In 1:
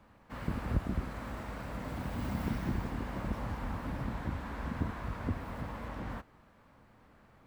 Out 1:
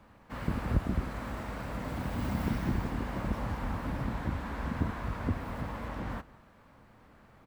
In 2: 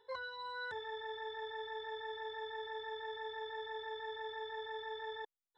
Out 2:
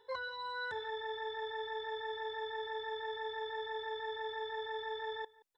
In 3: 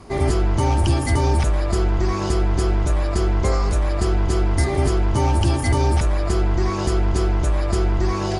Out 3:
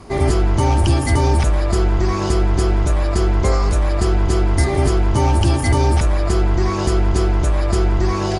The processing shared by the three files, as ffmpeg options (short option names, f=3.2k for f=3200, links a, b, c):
-filter_complex "[0:a]asplit=2[a][b];[b]adelay=174.9,volume=-22dB,highshelf=f=4k:g=-3.94[c];[a][c]amix=inputs=2:normalize=0,volume=3dB"